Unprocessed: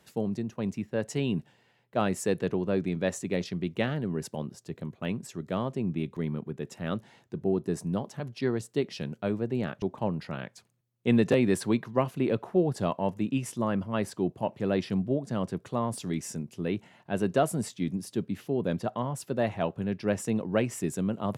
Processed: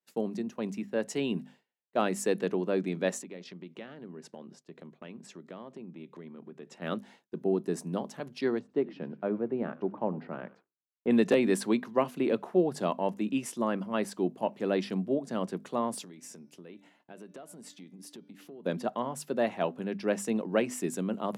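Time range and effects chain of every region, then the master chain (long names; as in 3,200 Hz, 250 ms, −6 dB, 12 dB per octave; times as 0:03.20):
0:03.22–0:06.82: downward compressor 4 to 1, threshold −40 dBFS + high-frequency loss of the air 69 metres
0:08.59–0:11.11: one scale factor per block 7 bits + low-pass filter 1,400 Hz + echo with shifted repeats 94 ms, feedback 47%, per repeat −72 Hz, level −19 dB
0:16.03–0:18.66: hum removal 291.6 Hz, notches 21 + downward compressor 10 to 1, threshold −42 dBFS
whole clip: high-pass filter 190 Hz 24 dB per octave; mains-hum notches 50/100/150/200/250 Hz; downward expander −49 dBFS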